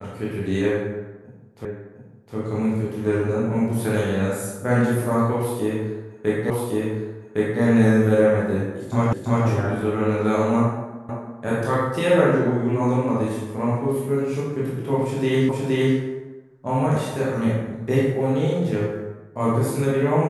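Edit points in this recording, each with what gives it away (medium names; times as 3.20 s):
1.65 s: repeat of the last 0.71 s
6.50 s: repeat of the last 1.11 s
9.13 s: repeat of the last 0.34 s
11.09 s: repeat of the last 0.34 s
15.49 s: repeat of the last 0.47 s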